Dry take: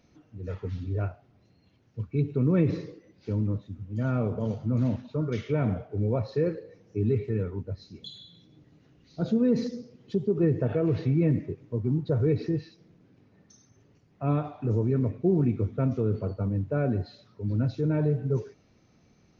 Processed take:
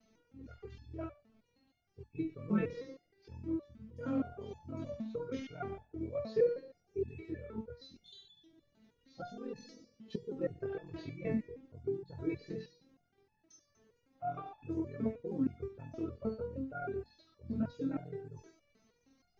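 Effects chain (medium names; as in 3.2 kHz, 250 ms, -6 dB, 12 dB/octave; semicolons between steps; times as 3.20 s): de-hum 79.75 Hz, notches 4; ring modulator 21 Hz; resonator arpeggio 6.4 Hz 220–860 Hz; trim +11 dB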